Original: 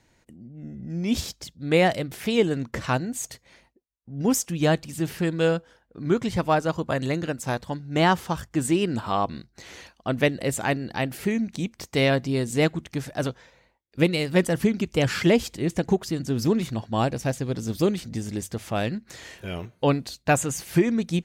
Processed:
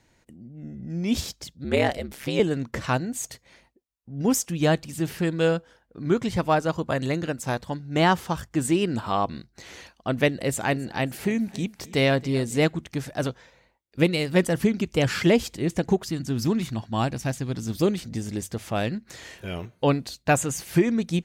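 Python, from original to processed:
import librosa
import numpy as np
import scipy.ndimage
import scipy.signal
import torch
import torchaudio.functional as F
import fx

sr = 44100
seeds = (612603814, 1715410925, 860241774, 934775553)

y = fx.ring_mod(x, sr, carrier_hz=68.0, at=(1.64, 2.4))
y = fx.echo_feedback(y, sr, ms=273, feedback_pct=43, wet_db=-20.0, at=(10.4, 12.58))
y = fx.peak_eq(y, sr, hz=490.0, db=-7.0, octaves=0.77, at=(16.05, 17.74))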